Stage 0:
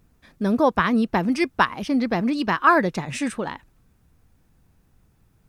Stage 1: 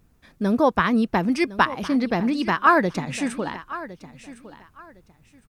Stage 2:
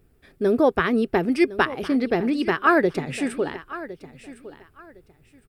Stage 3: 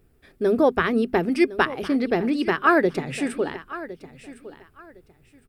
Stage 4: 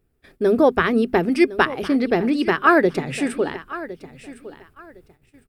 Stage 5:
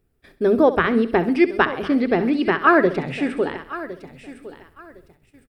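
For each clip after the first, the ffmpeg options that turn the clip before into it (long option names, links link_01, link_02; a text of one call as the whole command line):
ffmpeg -i in.wav -af "aecho=1:1:1059|2118:0.158|0.0349" out.wav
ffmpeg -i in.wav -af "equalizer=frequency=200:width_type=o:width=0.33:gain=-7,equalizer=frequency=400:width_type=o:width=0.33:gain=11,equalizer=frequency=1000:width_type=o:width=0.33:gain=-9,equalizer=frequency=4000:width_type=o:width=0.33:gain=-3,equalizer=frequency=6300:width_type=o:width=0.33:gain=-10" out.wav
ffmpeg -i in.wav -af "bandreject=frequency=50:width_type=h:width=6,bandreject=frequency=100:width_type=h:width=6,bandreject=frequency=150:width_type=h:width=6,bandreject=frequency=200:width_type=h:width=6,bandreject=frequency=250:width_type=h:width=6" out.wav
ffmpeg -i in.wav -af "agate=range=-11dB:threshold=-55dB:ratio=16:detection=peak,volume=3dB" out.wav
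ffmpeg -i in.wav -filter_complex "[0:a]aecho=1:1:66|132|198|264:0.188|0.0904|0.0434|0.0208,acrossover=split=4100[link_01][link_02];[link_02]acompressor=threshold=-55dB:ratio=4:attack=1:release=60[link_03];[link_01][link_03]amix=inputs=2:normalize=0" out.wav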